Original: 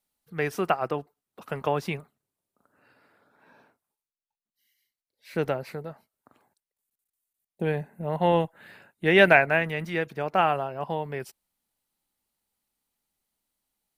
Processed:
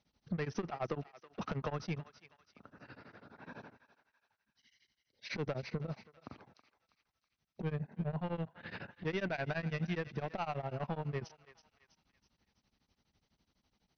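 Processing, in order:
high-pass filter 50 Hz
bass and treble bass +5 dB, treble 0 dB
harmonic and percussive parts rebalanced harmonic −4 dB
low-shelf EQ 270 Hz +8 dB
brickwall limiter −14 dBFS, peak gain reduction 11.5 dB
downward compressor 4 to 1, threshold −41 dBFS, peak gain reduction 17.5 dB
soft clipping −38 dBFS, distortion −11 dB
linear-phase brick-wall low-pass 6,300 Hz
feedback echo with a high-pass in the loop 324 ms, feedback 52%, high-pass 1,200 Hz, level −13 dB
tremolo along a rectified sine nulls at 12 Hz
level +10 dB

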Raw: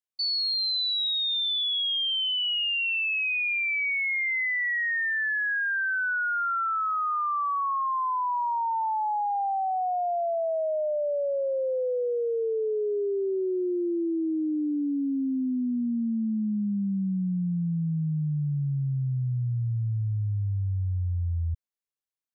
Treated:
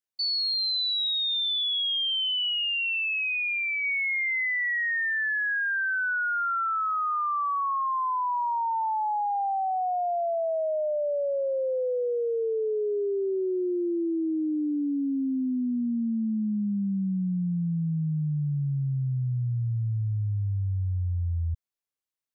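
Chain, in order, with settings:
0:02.49–0:03.84: parametric band 1,700 Hz −13 dB 0.28 octaves

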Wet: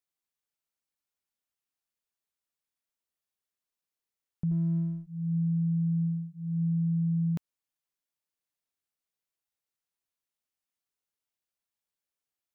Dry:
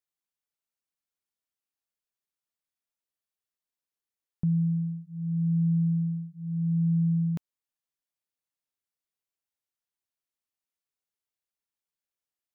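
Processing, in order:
brickwall limiter −24 dBFS, peak gain reduction 3.5 dB
0:04.51–0:05.07: windowed peak hold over 17 samples

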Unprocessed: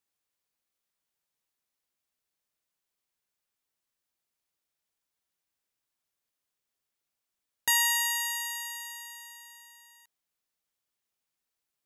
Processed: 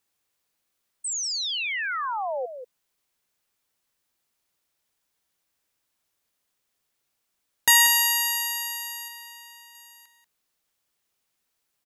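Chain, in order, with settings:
0:01.04–0:02.46: sound drawn into the spectrogram fall 480–8,600 Hz −37 dBFS
0:09.08–0:09.75: high-shelf EQ 7,900 Hz −8 dB
slap from a distant wall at 32 metres, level −9 dB
level +8 dB

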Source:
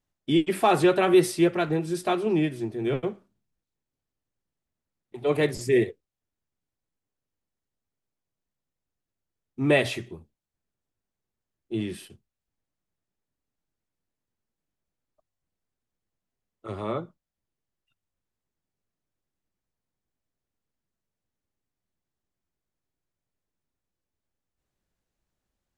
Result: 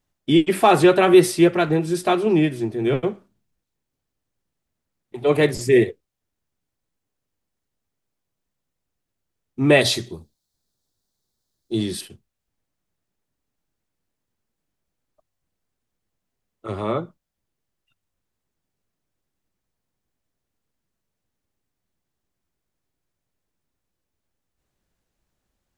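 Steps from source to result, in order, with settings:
0:09.81–0:12.01: high shelf with overshoot 3,300 Hz +7 dB, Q 3
level +6 dB

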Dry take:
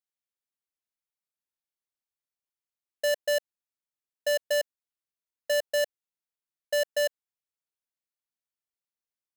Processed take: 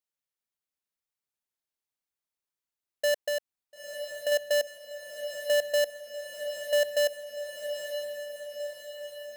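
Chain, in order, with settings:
0:03.19–0:04.32: downward compressor, threshold −29 dBFS, peak gain reduction 4.5 dB
on a send: feedback delay with all-pass diffusion 940 ms, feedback 61%, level −8 dB

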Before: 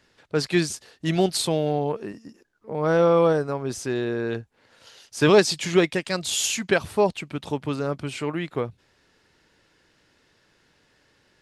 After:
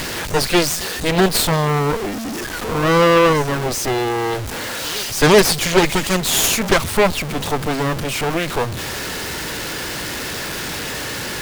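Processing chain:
converter with a step at zero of −21.5 dBFS
backwards echo 377 ms −21.5 dB
harmonic generator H 8 −9 dB, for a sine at −4 dBFS
level +1 dB

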